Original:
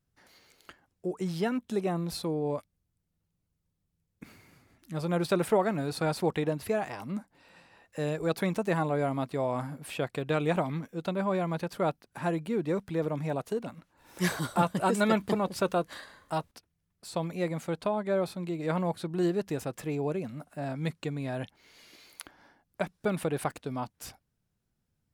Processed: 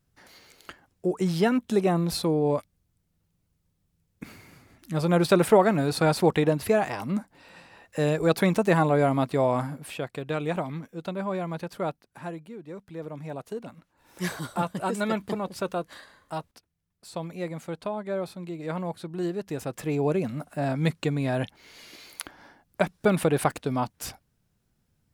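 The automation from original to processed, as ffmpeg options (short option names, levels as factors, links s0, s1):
-af "volume=22.4,afade=t=out:st=9.47:d=0.54:silence=0.398107,afade=t=out:st=11.83:d=0.76:silence=0.266073,afade=t=in:st=12.59:d=1.11:silence=0.298538,afade=t=in:st=19.42:d=0.8:silence=0.334965"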